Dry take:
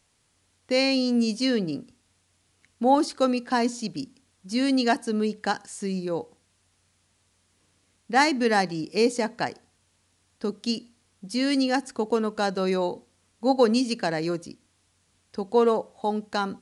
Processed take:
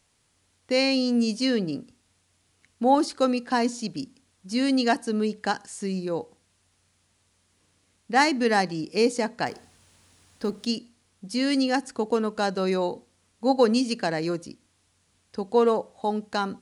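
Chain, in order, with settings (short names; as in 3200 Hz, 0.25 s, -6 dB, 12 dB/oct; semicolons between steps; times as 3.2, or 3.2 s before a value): 9.46–10.65 G.711 law mismatch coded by mu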